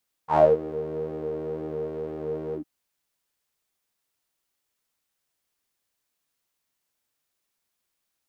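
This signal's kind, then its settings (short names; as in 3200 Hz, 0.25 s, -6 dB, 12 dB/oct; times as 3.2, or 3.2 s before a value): synth patch with pulse-width modulation D#3, oscillator 2 saw, sub -1.5 dB, filter bandpass, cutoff 250 Hz, Q 12, filter envelope 2 oct, filter decay 0.26 s, attack 89 ms, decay 0.20 s, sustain -16 dB, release 0.10 s, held 2.26 s, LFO 2 Hz, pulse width 47%, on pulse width 17%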